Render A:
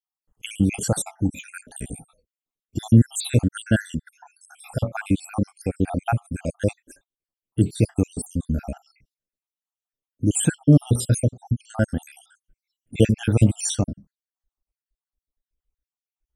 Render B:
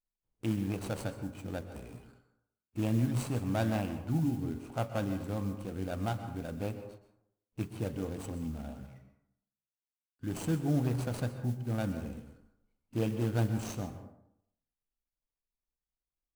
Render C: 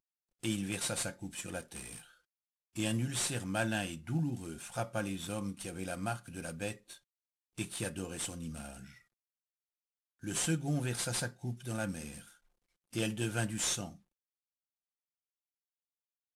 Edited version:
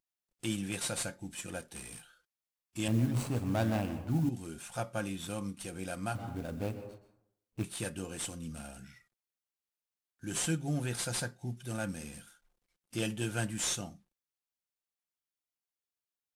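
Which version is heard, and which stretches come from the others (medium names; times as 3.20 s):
C
2.88–4.29 s: from B
6.15–7.64 s: from B
not used: A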